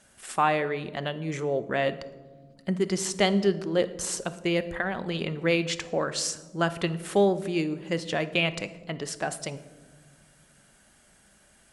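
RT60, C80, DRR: 1.3 s, 17.0 dB, 11.5 dB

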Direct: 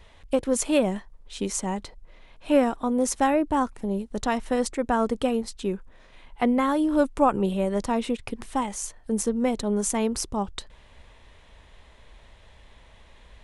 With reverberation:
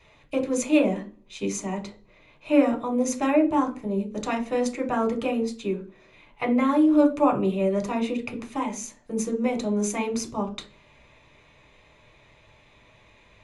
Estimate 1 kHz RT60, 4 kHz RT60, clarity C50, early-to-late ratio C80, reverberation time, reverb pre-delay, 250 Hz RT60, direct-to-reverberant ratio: 0.35 s, 0.35 s, 13.5 dB, 18.5 dB, 0.40 s, 3 ms, 0.55 s, 2.0 dB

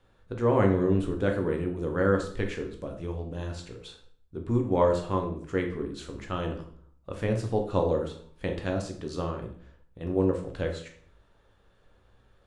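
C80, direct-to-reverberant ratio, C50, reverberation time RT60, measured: 12.5 dB, 3.0 dB, 8.5 dB, 0.55 s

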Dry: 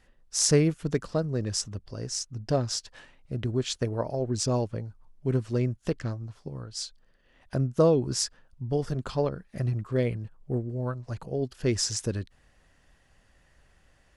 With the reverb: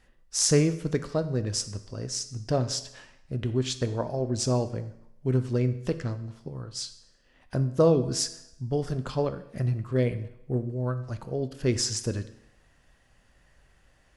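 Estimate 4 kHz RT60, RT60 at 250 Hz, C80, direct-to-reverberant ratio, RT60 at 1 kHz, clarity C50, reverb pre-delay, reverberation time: 0.75 s, 0.75 s, 16.0 dB, 10.0 dB, 0.75 s, 13.5 dB, 8 ms, 0.80 s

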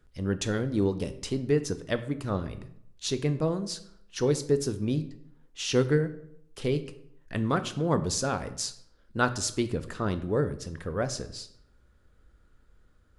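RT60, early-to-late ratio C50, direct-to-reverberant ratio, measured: 0.70 s, 14.0 dB, 10.0 dB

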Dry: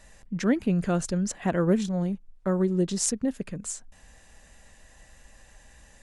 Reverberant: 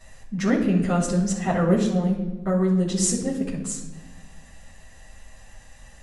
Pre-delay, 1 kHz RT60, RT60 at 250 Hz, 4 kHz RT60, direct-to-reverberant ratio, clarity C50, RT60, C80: 8 ms, 1.0 s, 1.8 s, 0.85 s, -7.0 dB, 6.0 dB, 1.2 s, 9.0 dB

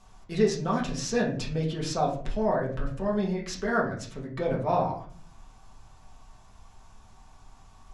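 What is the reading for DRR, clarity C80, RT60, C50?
-3.0 dB, 12.5 dB, 0.50 s, 8.0 dB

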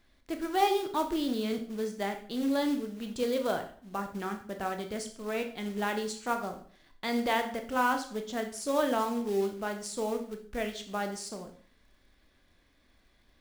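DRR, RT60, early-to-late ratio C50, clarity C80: 5.0 dB, 0.50 s, 10.0 dB, 14.0 dB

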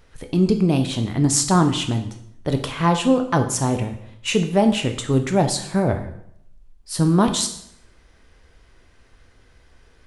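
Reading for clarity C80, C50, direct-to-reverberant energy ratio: 13.5 dB, 10.5 dB, 6.0 dB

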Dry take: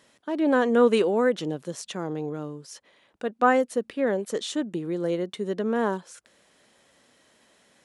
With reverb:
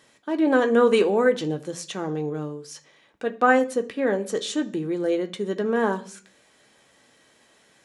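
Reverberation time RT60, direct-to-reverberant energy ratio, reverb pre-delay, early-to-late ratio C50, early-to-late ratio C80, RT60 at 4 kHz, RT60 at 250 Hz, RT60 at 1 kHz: 0.45 s, 4.5 dB, 3 ms, 17.0 dB, 21.5 dB, 0.55 s, 0.60 s, 0.40 s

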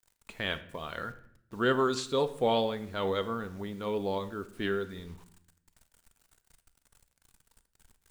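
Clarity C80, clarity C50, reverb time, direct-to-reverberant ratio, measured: 18.0 dB, 15.0 dB, 0.65 s, 10.5 dB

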